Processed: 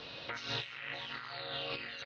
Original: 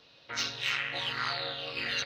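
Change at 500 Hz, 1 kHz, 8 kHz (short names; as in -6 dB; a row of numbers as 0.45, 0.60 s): -3.0, -7.0, -16.5 dB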